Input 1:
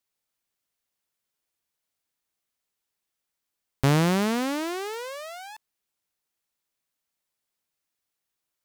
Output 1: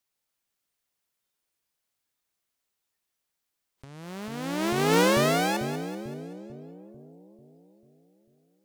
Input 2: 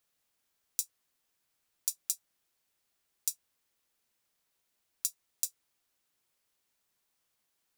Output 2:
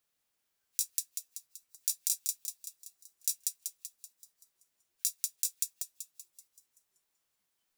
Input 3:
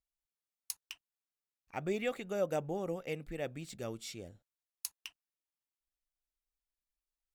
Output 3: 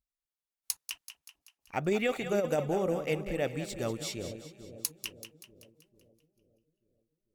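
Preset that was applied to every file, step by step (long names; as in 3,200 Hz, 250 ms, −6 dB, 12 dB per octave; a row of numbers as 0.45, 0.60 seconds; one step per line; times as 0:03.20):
echo with a time of its own for lows and highs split 540 Hz, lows 444 ms, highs 191 ms, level −10.5 dB
compressor whose output falls as the input rises −32 dBFS, ratio −0.5
noise reduction from a noise print of the clip's start 12 dB
level +6.5 dB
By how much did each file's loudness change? 0.0, +2.0, +6.0 LU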